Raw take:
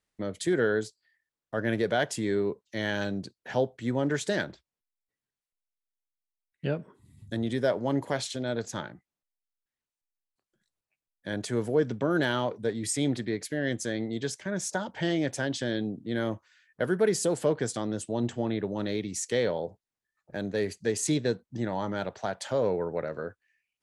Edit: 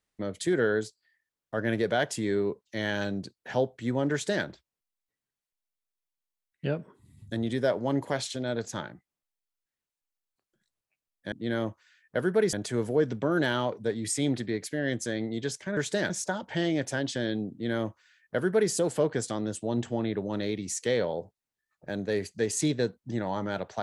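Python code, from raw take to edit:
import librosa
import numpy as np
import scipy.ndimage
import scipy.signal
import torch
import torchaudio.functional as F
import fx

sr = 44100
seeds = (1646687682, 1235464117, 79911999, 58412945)

y = fx.edit(x, sr, fx.duplicate(start_s=4.12, length_s=0.33, to_s=14.56),
    fx.duplicate(start_s=15.97, length_s=1.21, to_s=11.32), tone=tone)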